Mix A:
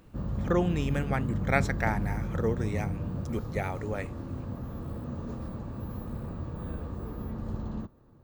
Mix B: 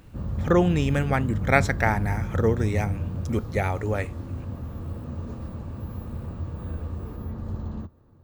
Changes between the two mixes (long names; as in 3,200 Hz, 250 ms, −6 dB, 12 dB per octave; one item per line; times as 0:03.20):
speech +6.5 dB
master: add parametric band 84 Hz +8 dB 0.48 octaves